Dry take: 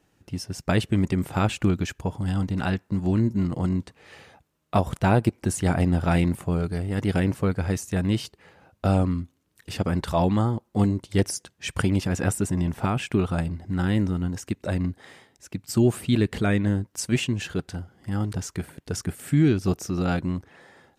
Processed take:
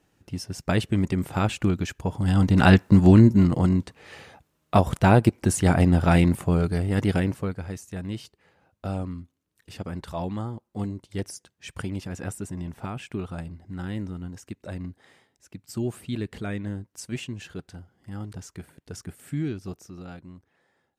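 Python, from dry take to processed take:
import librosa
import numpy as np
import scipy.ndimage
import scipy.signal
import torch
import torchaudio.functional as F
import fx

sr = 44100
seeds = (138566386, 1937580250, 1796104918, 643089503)

y = fx.gain(x, sr, db=fx.line((1.98, -1.0), (2.79, 12.0), (3.78, 3.0), (6.98, 3.0), (7.68, -9.0), (19.37, -9.0), (20.2, -17.5)))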